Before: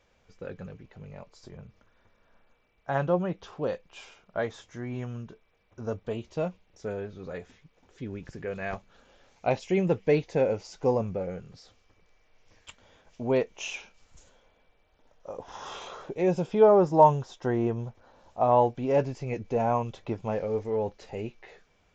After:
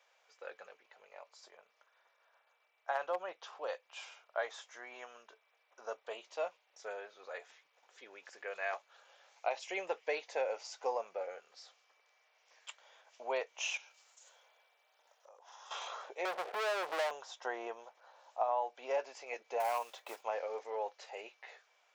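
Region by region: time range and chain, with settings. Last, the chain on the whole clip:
0.71–3.89 tremolo saw down 7.4 Hz, depth 30% + overloaded stage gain 18.5 dB
13.77–15.71 high shelf 5600 Hz +8.5 dB + compressor 5:1, threshold -52 dBFS
16.25–17.11 Chebyshev band-pass 110–720 Hz, order 4 + compressor, threshold -31 dBFS + sample leveller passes 5
19.6–20.24 block floating point 5-bit + hard clip -22 dBFS
whole clip: HPF 620 Hz 24 dB/oct; compressor 6:1, threshold -29 dBFS; gain -1 dB

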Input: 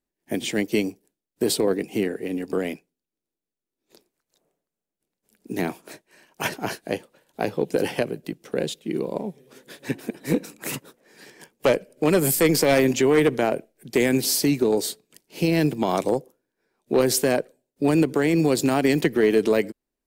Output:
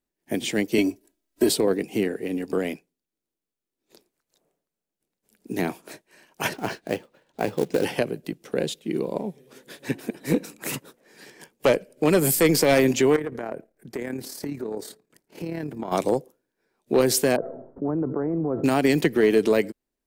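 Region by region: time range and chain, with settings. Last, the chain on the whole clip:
0.78–1.49 comb 3.1 ms, depth 99% + three-band squash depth 40%
6.53–7.85 air absorption 95 m + short-mantissa float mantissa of 2-bit
13.16–15.92 compressor 4:1, threshold -26 dBFS + resonant high shelf 2200 Hz -7 dB, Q 1.5 + AM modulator 36 Hz, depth 35%
17.36–18.64 steep low-pass 1300 Hz + resonator 670 Hz, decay 0.32 s + fast leveller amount 70%
whole clip: dry

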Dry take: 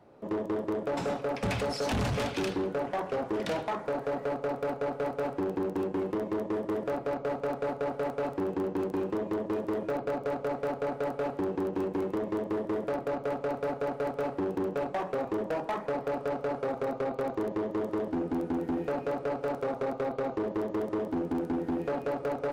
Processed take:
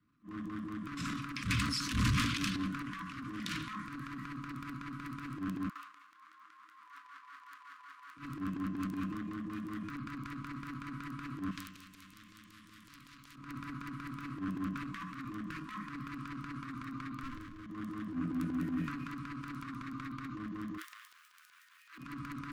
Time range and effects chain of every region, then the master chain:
5.69–8.17 minimum comb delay 0.42 ms + ladder high-pass 730 Hz, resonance 45%
11.51–13.36 compressor 2.5:1, threshold -34 dBFS + hard clip -28.5 dBFS + spectral compressor 2:1
17.23–17.66 minimum comb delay 3.1 ms + compressor 2:1, threshold -38 dBFS
20.77–21.98 block floating point 7-bit + HPF 1400 Hz 24 dB/oct
whole clip: FFT band-reject 320–1000 Hz; transient shaper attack -12 dB, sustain +7 dB; three-band expander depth 40%; gain -1.5 dB

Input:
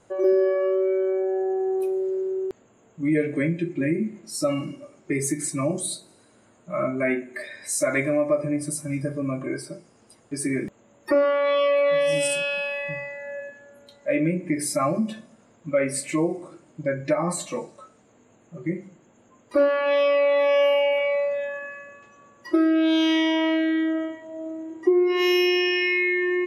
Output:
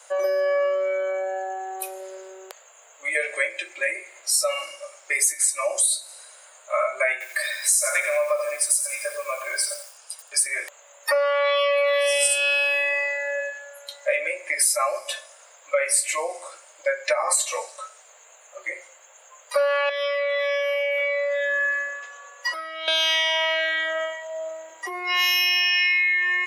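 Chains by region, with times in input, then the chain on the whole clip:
7.12–10.46 low shelf 400 Hz -10.5 dB + notch 2000 Hz, Q 8 + lo-fi delay 86 ms, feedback 35%, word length 9-bit, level -8.5 dB
19.89–22.88 high shelf 7300 Hz -7.5 dB + comb 4.1 ms, depth 95% + compressor 12:1, threshold -27 dBFS
whole clip: elliptic high-pass 540 Hz, stop band 60 dB; tilt +3.5 dB/oct; compressor 4:1, threshold -28 dBFS; gain +8.5 dB

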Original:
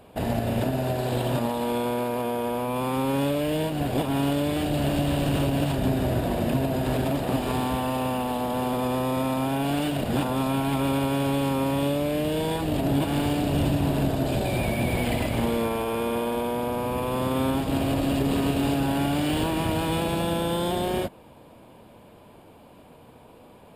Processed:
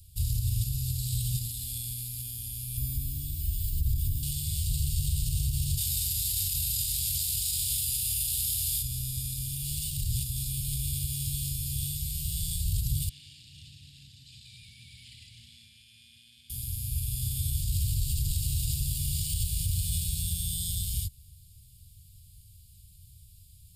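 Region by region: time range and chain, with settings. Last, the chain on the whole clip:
2.77–4.23 band shelf 4900 Hz -13 dB 2.8 oct + comb 3 ms, depth 97% + fast leveller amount 100%
5.77–8.81 spectral limiter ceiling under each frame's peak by 24 dB + HPF 54 Hz 24 dB/oct + doubler 22 ms -7 dB
13.09–16.5 BPF 500–2300 Hz + notch 760 Hz, Q 6
whole clip: inverse Chebyshev band-stop 390–1200 Hz, stop band 80 dB; limiter -28 dBFS; gain +9 dB

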